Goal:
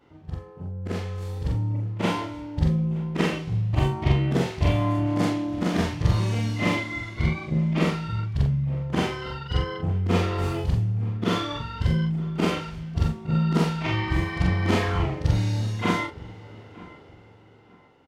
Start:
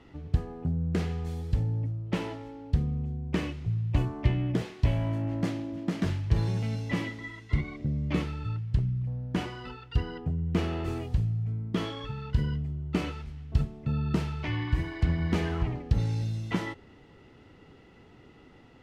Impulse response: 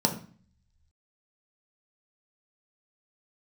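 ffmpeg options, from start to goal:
-filter_complex "[0:a]afftfilt=real='re':imag='-im':win_size=4096:overlap=0.75,highpass=f=50:p=1,dynaudnorm=f=250:g=11:m=11dB,equalizer=f=790:w=0.66:g=6.5,asplit=2[a][b];[b]adelay=13,volume=-12dB[c];[a][c]amix=inputs=2:normalize=0,asplit=2[d][e];[e]adelay=959,lowpass=f=2.4k:p=1,volume=-20dB,asplit=2[f][g];[g]adelay=959,lowpass=f=2.4k:p=1,volume=0.29[h];[f][h]amix=inputs=2:normalize=0[i];[d][i]amix=inputs=2:normalize=0,asetrate=45938,aresample=44100,adynamicequalizer=threshold=0.00891:dfrequency=2500:dqfactor=0.7:tfrequency=2500:tqfactor=0.7:attack=5:release=100:ratio=0.375:range=2:mode=boostabove:tftype=highshelf,volume=-2dB"

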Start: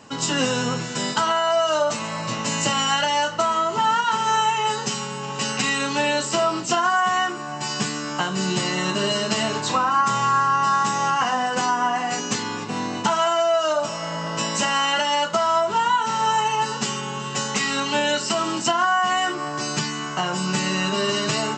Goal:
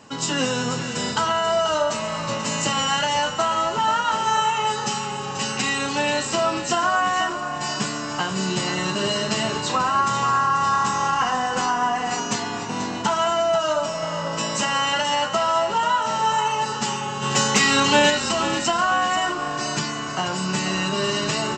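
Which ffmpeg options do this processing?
-filter_complex "[0:a]asplit=3[a][b][c];[a]afade=t=out:st=17.21:d=0.02[d];[b]acontrast=80,afade=t=in:st=17.21:d=0.02,afade=t=out:st=18.09:d=0.02[e];[c]afade=t=in:st=18.09:d=0.02[f];[d][e][f]amix=inputs=3:normalize=0,asplit=6[g][h][i][j][k][l];[h]adelay=486,afreqshift=-31,volume=-10dB[m];[i]adelay=972,afreqshift=-62,volume=-16.9dB[n];[j]adelay=1458,afreqshift=-93,volume=-23.9dB[o];[k]adelay=1944,afreqshift=-124,volume=-30.8dB[p];[l]adelay=2430,afreqshift=-155,volume=-37.7dB[q];[g][m][n][o][p][q]amix=inputs=6:normalize=0,volume=-1dB"

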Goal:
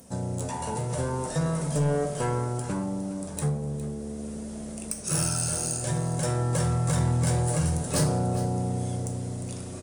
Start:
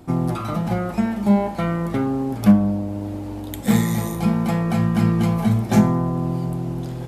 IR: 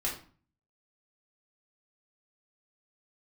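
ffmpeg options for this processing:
-filter_complex "[0:a]aemphasis=mode=production:type=bsi,dynaudnorm=f=150:g=11:m=11.5dB,asetrate=31752,aresample=44100,asplit=2[a][b];[b]acompressor=threshold=-29dB:ratio=6,volume=-1dB[c];[a][c]amix=inputs=2:normalize=0,asoftclip=type=tanh:threshold=-10.5dB,equalizer=f=3k:t=o:w=1.8:g=-6,aecho=1:1:410:0.2,asplit=2[d][e];[1:a]atrim=start_sample=2205,highshelf=f=4.5k:g=11[f];[e][f]afir=irnorm=-1:irlink=0,volume=-15.5dB[g];[d][g]amix=inputs=2:normalize=0,volume=-9dB"

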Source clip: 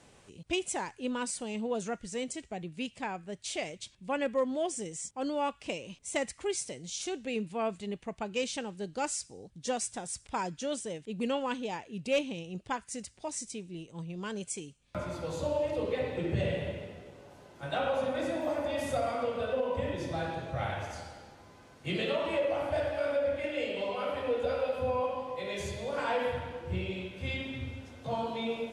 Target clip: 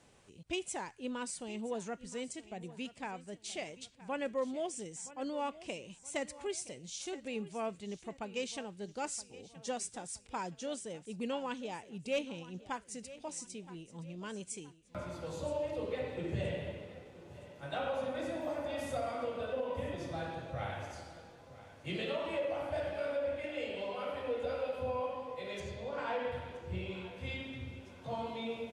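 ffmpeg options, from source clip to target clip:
-filter_complex "[0:a]asettb=1/sr,asplit=3[a][b][c];[a]atrim=end=25.604[d];[b]atrim=start=25.6:end=26.32,asetpts=PTS-STARTPTS,afade=t=in:d=0.004:c=qsin,afade=t=out:st=0.716:d=0.004:c=qsin,adynamicsmooth=sensitivity=3:basefreq=5.1k[e];[c]atrim=start=26.316[f];[d][e]acrossfade=d=0.004:c1=hsin:c2=qsin[g];[g][f]acrossfade=d=0.004:c1=qsin:c2=hsin,aecho=1:1:971|1942|2913:0.141|0.0537|0.0204,volume=-5.5dB"

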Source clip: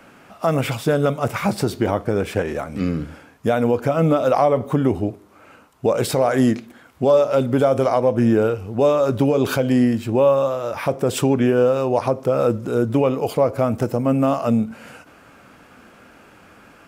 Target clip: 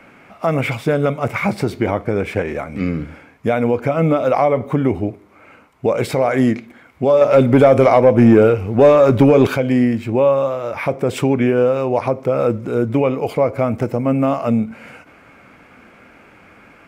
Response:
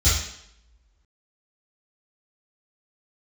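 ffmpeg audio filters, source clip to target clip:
-filter_complex "[0:a]equalizer=f=2.2k:t=o:w=0.29:g=11,asettb=1/sr,asplit=3[a][b][c];[a]atrim=end=7.214[d];[b]atrim=start=7.21:end=9.47,asetpts=PTS-STARTPTS,afade=t=in:d=0.004:c=qsin,afade=t=out:st=2.256:d=0.004:c=qsin,acontrast=65[e];[c]atrim=start=9.466[f];[d][e]acrossfade=d=0.004:c1=hsin:c2=qsin[g];[g][f]acrossfade=d=0.004:c1=qsin:c2=hsin,highshelf=f=3.6k:g=-8.5,volume=1.5dB"

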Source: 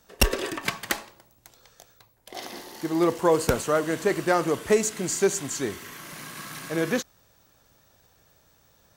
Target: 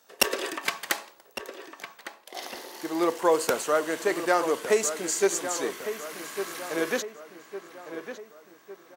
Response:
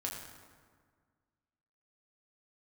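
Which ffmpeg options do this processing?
-filter_complex "[0:a]highpass=380,asplit=2[a][b];[b]adelay=1156,lowpass=f=2.6k:p=1,volume=-10dB,asplit=2[c][d];[d]adelay=1156,lowpass=f=2.6k:p=1,volume=0.51,asplit=2[e][f];[f]adelay=1156,lowpass=f=2.6k:p=1,volume=0.51,asplit=2[g][h];[h]adelay=1156,lowpass=f=2.6k:p=1,volume=0.51,asplit=2[i][j];[j]adelay=1156,lowpass=f=2.6k:p=1,volume=0.51,asplit=2[k][l];[l]adelay=1156,lowpass=f=2.6k:p=1,volume=0.51[m];[c][e][g][i][k][m]amix=inputs=6:normalize=0[n];[a][n]amix=inputs=2:normalize=0"

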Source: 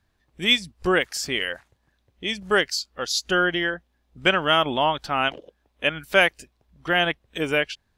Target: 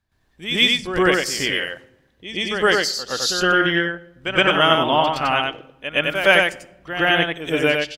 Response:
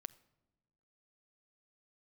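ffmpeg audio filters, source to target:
-filter_complex "[0:a]aecho=1:1:93:0.631,asplit=2[a][b];[1:a]atrim=start_sample=2205,adelay=117[c];[b][c]afir=irnorm=-1:irlink=0,volume=14.5dB[d];[a][d]amix=inputs=2:normalize=0,volume=-7dB"

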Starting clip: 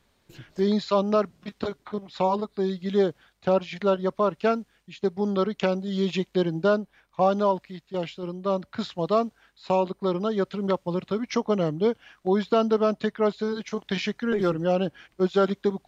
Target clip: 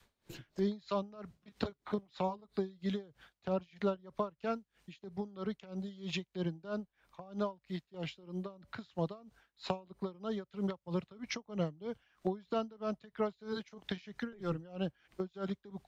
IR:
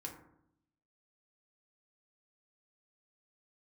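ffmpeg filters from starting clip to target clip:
-filter_complex "[0:a]adynamicequalizer=threshold=0.02:dfrequency=290:dqfactor=0.89:tfrequency=290:tqfactor=0.89:attack=5:release=100:ratio=0.375:range=2.5:mode=cutabove:tftype=bell,acrossover=split=140[a][b];[b]acompressor=threshold=-35dB:ratio=4[c];[a][c]amix=inputs=2:normalize=0,aeval=exprs='val(0)*pow(10,-23*(0.5-0.5*cos(2*PI*3.1*n/s))/20)':c=same,volume=2.5dB"

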